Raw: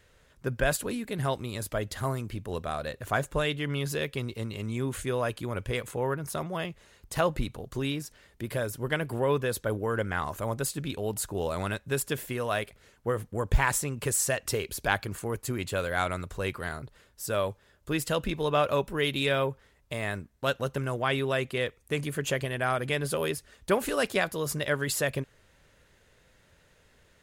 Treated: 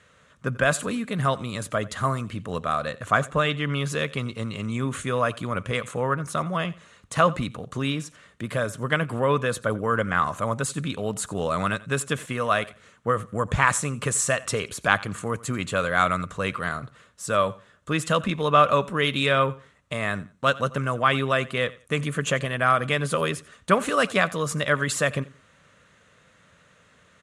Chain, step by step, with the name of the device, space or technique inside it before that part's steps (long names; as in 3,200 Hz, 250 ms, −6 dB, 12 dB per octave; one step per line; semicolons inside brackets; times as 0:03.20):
car door speaker (loudspeaker in its box 110–9,100 Hz, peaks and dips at 180 Hz +4 dB, 370 Hz −8 dB, 850 Hz −5 dB, 1,200 Hz +9 dB, 4,900 Hz −7 dB)
0:03.30–0:03.71: high-shelf EQ 7,900 Hz → 12,000 Hz −9.5 dB
repeating echo 88 ms, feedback 24%, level −20.5 dB
level +5.5 dB